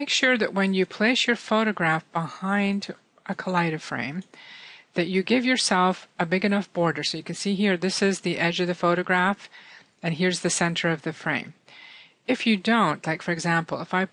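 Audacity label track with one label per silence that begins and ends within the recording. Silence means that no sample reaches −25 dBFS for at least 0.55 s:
4.190000	4.960000	silence
9.330000	10.040000	silence
11.430000	12.290000	silence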